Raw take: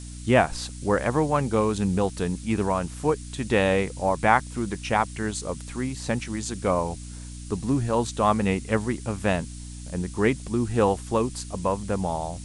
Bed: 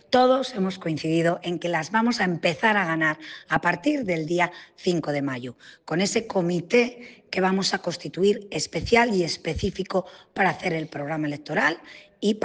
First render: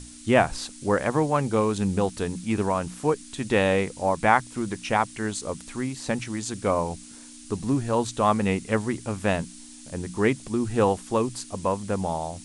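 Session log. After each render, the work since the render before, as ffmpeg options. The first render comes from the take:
ffmpeg -i in.wav -af "bandreject=frequency=60:width_type=h:width=6,bandreject=frequency=120:width_type=h:width=6,bandreject=frequency=180:width_type=h:width=6" out.wav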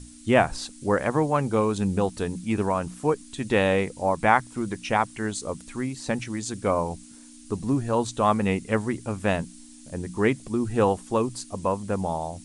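ffmpeg -i in.wav -af "afftdn=noise_reduction=6:noise_floor=-45" out.wav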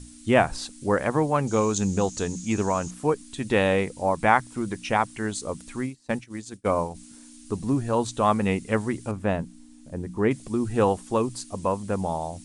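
ffmpeg -i in.wav -filter_complex "[0:a]asettb=1/sr,asplit=3[link_01][link_02][link_03];[link_01]atrim=end=1.474[link_04];[link_02]atrim=start=1.47:end=2.91,asetpts=PTS-STARTPTS,afade=type=in:duration=0.004:curve=qsin,afade=type=out:start_time=1.436:duration=0.004:curve=qsin,lowpass=frequency=6700:width_type=q:width=7.8[link_05];[link_03]atrim=start=2.906[link_06];[link_04][link_05]acrossfade=duration=0.004:curve1=hsin:curve2=qsin[link_07];[link_07][link_06]acrossfade=duration=0.004:curve1=qsin:curve2=hsin,asplit=3[link_08][link_09][link_10];[link_08]afade=type=out:start_time=5.85:duration=0.02[link_11];[link_09]agate=range=-33dB:threshold=-26dB:ratio=3:release=100:detection=peak,afade=type=in:start_time=5.85:duration=0.02,afade=type=out:start_time=6.94:duration=0.02[link_12];[link_10]afade=type=in:start_time=6.94:duration=0.02[link_13];[link_11][link_12][link_13]amix=inputs=3:normalize=0,asettb=1/sr,asplit=3[link_14][link_15][link_16];[link_14]atrim=end=9.114[link_17];[link_15]atrim=start=9.11:end=10.31,asetpts=PTS-STARTPTS,afade=type=in:duration=0.004:curve=qsin,afade=type=out:start_time=1.196:duration=0.004:curve=qsin,highshelf=frequency=2100:gain=-11.5[link_18];[link_16]atrim=start=10.306[link_19];[link_17][link_18]acrossfade=duration=0.004:curve1=hsin:curve2=qsin[link_20];[link_20][link_19]acrossfade=duration=0.004:curve1=qsin:curve2=hsin" out.wav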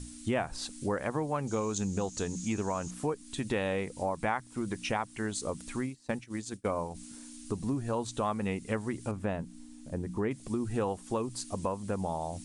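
ffmpeg -i in.wav -af "acompressor=threshold=-31dB:ratio=3" out.wav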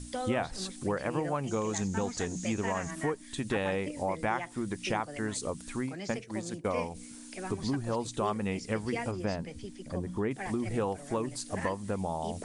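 ffmpeg -i in.wav -i bed.wav -filter_complex "[1:a]volume=-18dB[link_01];[0:a][link_01]amix=inputs=2:normalize=0" out.wav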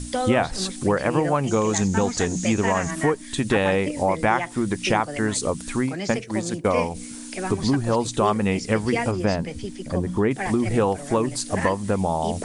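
ffmpeg -i in.wav -af "volume=10.5dB" out.wav

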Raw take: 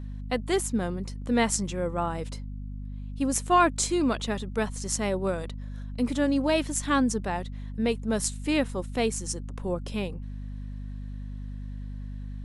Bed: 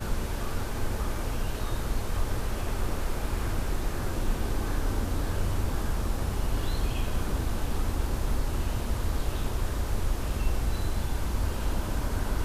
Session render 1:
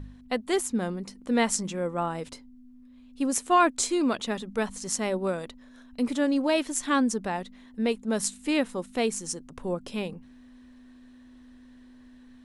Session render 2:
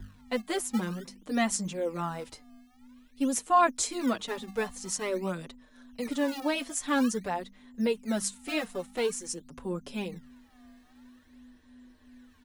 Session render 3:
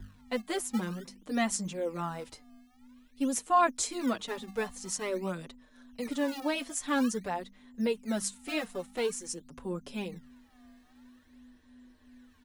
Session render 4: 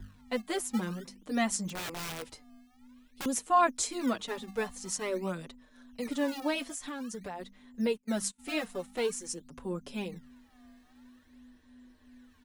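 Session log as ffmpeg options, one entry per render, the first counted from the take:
ffmpeg -i in.wav -af "bandreject=frequency=50:width_type=h:width=4,bandreject=frequency=100:width_type=h:width=4,bandreject=frequency=150:width_type=h:width=4,bandreject=frequency=200:width_type=h:width=4" out.wav
ffmpeg -i in.wav -filter_complex "[0:a]acrossover=split=250|1300|3300[link_01][link_02][link_03][link_04];[link_01]acrusher=samples=26:mix=1:aa=0.000001:lfo=1:lforange=41.6:lforate=0.49[link_05];[link_05][link_02][link_03][link_04]amix=inputs=4:normalize=0,asplit=2[link_06][link_07];[link_07]adelay=5.6,afreqshift=-2.7[link_08];[link_06][link_08]amix=inputs=2:normalize=1" out.wav
ffmpeg -i in.wav -af "volume=-2dB" out.wav
ffmpeg -i in.wav -filter_complex "[0:a]asettb=1/sr,asplit=3[link_01][link_02][link_03];[link_01]atrim=end=1.684[link_04];[link_02]atrim=start=1.68:end=3.26,asetpts=PTS-STARTPTS,afade=type=in:duration=0.004:curve=qsin,afade=type=out:start_time=1.576:duration=0.004:curve=qsin,aeval=exprs='(mod(44.7*val(0)+1,2)-1)/44.7':channel_layout=same[link_05];[link_03]atrim=start=3.256[link_06];[link_04][link_05]acrossfade=duration=0.004:curve1=hsin:curve2=qsin[link_07];[link_07][link_06]acrossfade=duration=0.004:curve1=qsin:curve2=hsin,asplit=3[link_08][link_09][link_10];[link_08]afade=type=out:start_time=6.63:duration=0.02[link_11];[link_09]acompressor=threshold=-35dB:ratio=12:attack=3.2:release=140:knee=1:detection=peak,afade=type=in:start_time=6.63:duration=0.02,afade=type=out:start_time=7.39:duration=0.02[link_12];[link_10]afade=type=in:start_time=7.39:duration=0.02[link_13];[link_11][link_12][link_13]amix=inputs=3:normalize=0,asplit=3[link_14][link_15][link_16];[link_14]afade=type=out:start_time=7.91:duration=0.02[link_17];[link_15]agate=range=-24dB:threshold=-40dB:ratio=16:release=100:detection=peak,afade=type=in:start_time=7.91:duration=0.02,afade=type=out:start_time=8.38:duration=0.02[link_18];[link_16]afade=type=in:start_time=8.38:duration=0.02[link_19];[link_17][link_18][link_19]amix=inputs=3:normalize=0" out.wav

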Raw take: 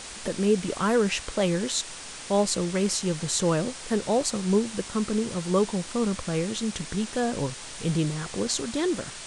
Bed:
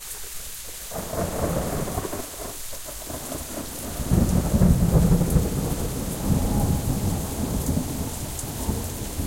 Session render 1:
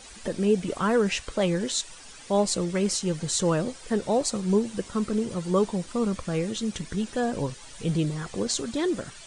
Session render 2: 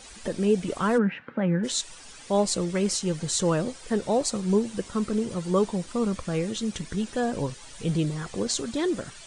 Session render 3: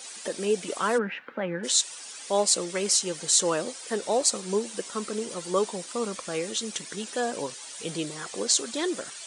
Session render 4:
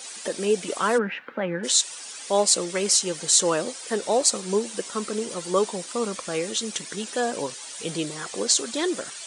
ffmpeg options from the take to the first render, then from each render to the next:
ffmpeg -i in.wav -af "afftdn=noise_reduction=11:noise_floor=-40" out.wav
ffmpeg -i in.wav -filter_complex "[0:a]asplit=3[link_01][link_02][link_03];[link_01]afade=type=out:start_time=0.97:duration=0.02[link_04];[link_02]highpass=frequency=140:width=0.5412,highpass=frequency=140:width=1.3066,equalizer=frequency=160:width_type=q:width=4:gain=5,equalizer=frequency=240:width_type=q:width=4:gain=7,equalizer=frequency=400:width_type=q:width=4:gain=-7,equalizer=frequency=650:width_type=q:width=4:gain=-8,equalizer=frequency=1100:width_type=q:width=4:gain=-6,equalizer=frequency=1500:width_type=q:width=4:gain=4,lowpass=frequency=2000:width=0.5412,lowpass=frequency=2000:width=1.3066,afade=type=in:start_time=0.97:duration=0.02,afade=type=out:start_time=1.63:duration=0.02[link_05];[link_03]afade=type=in:start_time=1.63:duration=0.02[link_06];[link_04][link_05][link_06]amix=inputs=3:normalize=0" out.wav
ffmpeg -i in.wav -af "highpass=360,highshelf=frequency=3800:gain=8.5" out.wav
ffmpeg -i in.wav -af "volume=3dB,alimiter=limit=-3dB:level=0:latency=1" out.wav

